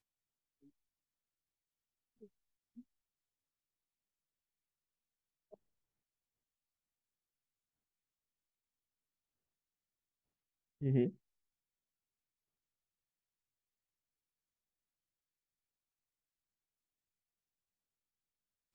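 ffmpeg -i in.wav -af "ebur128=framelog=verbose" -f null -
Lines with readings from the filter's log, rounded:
Integrated loudness:
  I:         -36.0 LUFS
  Threshold: -51.3 LUFS
Loudness range:
  LRA:         1.5 LU
  Threshold: -65.8 LUFS
  LRA low:   -44.6 LUFS
  LRA high:  -43.0 LUFS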